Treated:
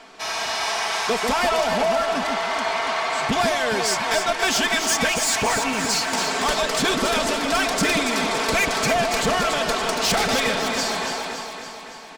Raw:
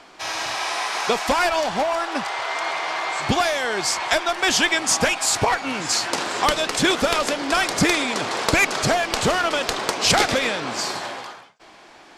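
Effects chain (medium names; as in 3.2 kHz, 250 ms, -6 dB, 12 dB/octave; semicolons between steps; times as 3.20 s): comb 4.5 ms, depth 61%; saturation -17 dBFS, distortion -11 dB; echo whose repeats swap between lows and highs 141 ms, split 1.1 kHz, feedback 77%, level -4 dB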